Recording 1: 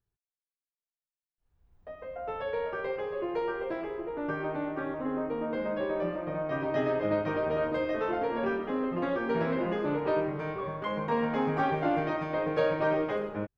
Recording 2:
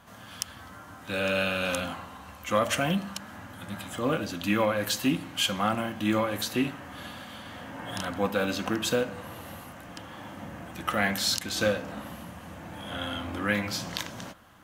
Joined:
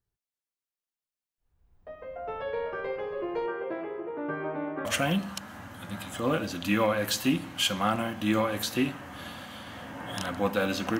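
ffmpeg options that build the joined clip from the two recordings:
ffmpeg -i cue0.wav -i cue1.wav -filter_complex "[0:a]asettb=1/sr,asplit=3[link_01][link_02][link_03];[link_01]atrim=end=3.464[link_04];[link_02]atrim=start=3.46:end=4.85,asetpts=PTS-STARTPTS,afade=type=in:duration=0.004:curve=qsin,afade=type=out:start_time=1.386:duration=0.004:curve=qsin,highpass=130,lowpass=2900[link_05];[link_03]atrim=start=4.846[link_06];[link_04][link_05]acrossfade=duration=0.004:curve1=hsin:curve2=qsin[link_07];[link_07][link_06]acrossfade=duration=0.004:curve1=qsin:curve2=hsin,apad=whole_dur=10.99,atrim=end=10.99,atrim=end=4.852[link_08];[1:a]atrim=start=2.638:end=8.78[link_09];[link_08][link_09]acrossfade=duration=0.004:curve1=hsin:curve2=hsin" out.wav

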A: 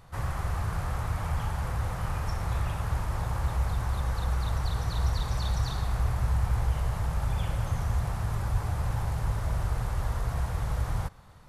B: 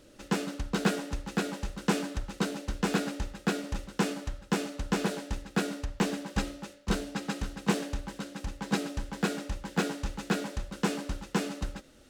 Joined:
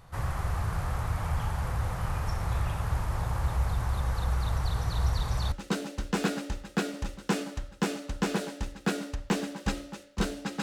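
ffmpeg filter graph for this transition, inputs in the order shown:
ffmpeg -i cue0.wav -i cue1.wav -filter_complex "[0:a]apad=whole_dur=10.62,atrim=end=10.62,atrim=end=5.522[link_01];[1:a]atrim=start=2.218:end=7.32[link_02];[link_01][link_02]acrossfade=duration=0.004:curve1=hsin:curve2=hsin" out.wav

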